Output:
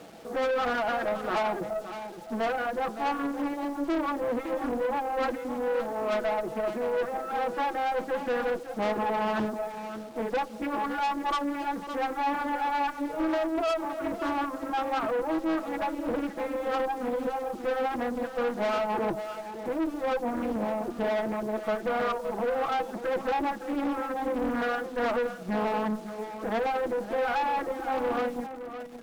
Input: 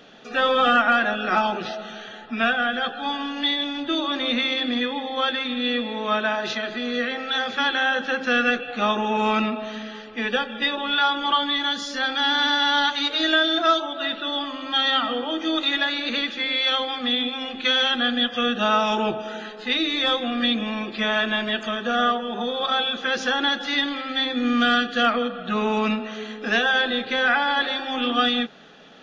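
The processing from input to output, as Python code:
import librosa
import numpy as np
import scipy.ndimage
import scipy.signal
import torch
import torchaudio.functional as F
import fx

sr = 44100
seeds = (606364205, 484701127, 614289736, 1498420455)

p1 = scipy.signal.sosfilt(scipy.signal.butter(4, 1000.0, 'lowpass', fs=sr, output='sos'), x)
p2 = fx.dereverb_blind(p1, sr, rt60_s=1.6)
p3 = fx.highpass(p2, sr, hz=190.0, slope=6)
p4 = p3 + 0.57 * np.pad(p3, (int(6.1 * sr / 1000.0), 0))[:len(p3)]
p5 = fx.rider(p4, sr, range_db=10, speed_s=0.5)
p6 = p4 + (p5 * 10.0 ** (1.0 / 20.0))
p7 = fx.quant_dither(p6, sr, seeds[0], bits=8, dither='none')
p8 = fx.tube_stage(p7, sr, drive_db=23.0, bias=0.45)
p9 = p8 + fx.echo_single(p8, sr, ms=565, db=-10.5, dry=0)
p10 = fx.doppler_dist(p9, sr, depth_ms=0.52)
y = p10 * 10.0 ** (-1.5 / 20.0)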